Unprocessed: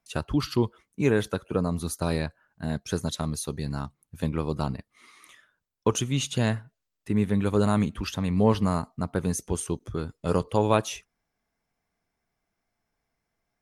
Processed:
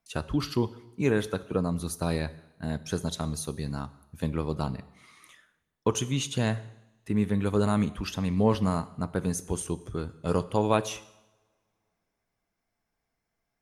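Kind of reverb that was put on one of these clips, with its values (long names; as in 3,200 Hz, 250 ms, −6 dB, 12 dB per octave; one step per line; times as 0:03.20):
coupled-rooms reverb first 0.87 s, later 2.9 s, from −27 dB, DRR 14 dB
level −2 dB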